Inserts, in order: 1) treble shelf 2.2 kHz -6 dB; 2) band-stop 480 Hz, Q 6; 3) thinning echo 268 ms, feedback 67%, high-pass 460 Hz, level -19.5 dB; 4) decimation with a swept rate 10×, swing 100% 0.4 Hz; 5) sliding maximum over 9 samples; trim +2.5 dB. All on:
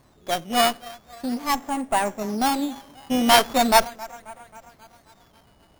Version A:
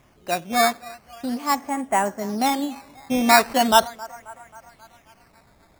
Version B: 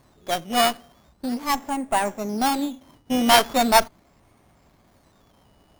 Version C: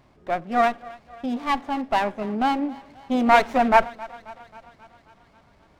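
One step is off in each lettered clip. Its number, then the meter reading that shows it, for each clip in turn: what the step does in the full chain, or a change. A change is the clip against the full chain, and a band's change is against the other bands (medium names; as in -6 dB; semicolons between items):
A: 5, distortion -3 dB; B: 3, momentary loudness spread change -7 LU; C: 4, distortion -1 dB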